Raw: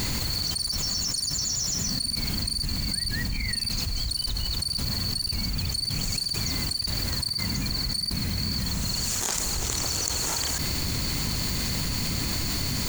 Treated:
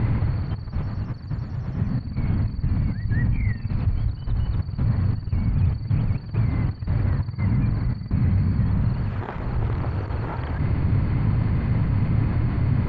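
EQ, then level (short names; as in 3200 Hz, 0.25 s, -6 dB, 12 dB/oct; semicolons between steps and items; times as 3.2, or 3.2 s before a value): LPF 1800 Hz 12 dB/oct; air absorption 450 m; bell 110 Hz +10 dB 0.95 oct; +4.5 dB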